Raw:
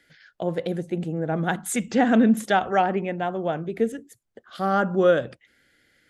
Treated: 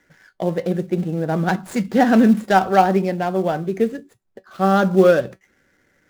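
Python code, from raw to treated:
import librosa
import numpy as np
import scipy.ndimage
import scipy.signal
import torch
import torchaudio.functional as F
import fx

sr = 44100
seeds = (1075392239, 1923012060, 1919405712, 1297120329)

p1 = scipy.ndimage.median_filter(x, 15, mode='constant')
p2 = fx.comb_fb(p1, sr, f0_hz=190.0, decay_s=0.15, harmonics='all', damping=0.0, mix_pct=60)
p3 = fx.quant_float(p2, sr, bits=2)
p4 = p2 + (p3 * librosa.db_to_amplitude(-9.5))
y = p4 * librosa.db_to_amplitude(8.0)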